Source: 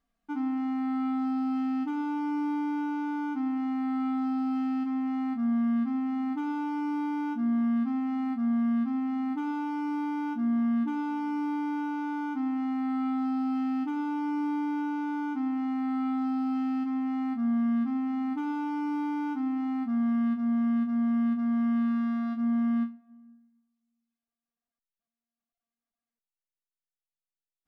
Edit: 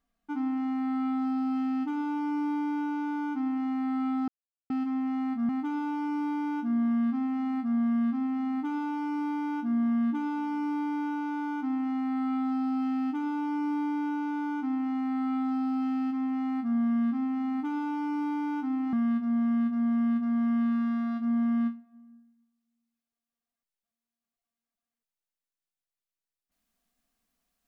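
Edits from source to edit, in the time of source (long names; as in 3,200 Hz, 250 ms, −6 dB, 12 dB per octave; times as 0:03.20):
0:04.28–0:04.70: silence
0:05.49–0:06.22: remove
0:19.66–0:20.09: remove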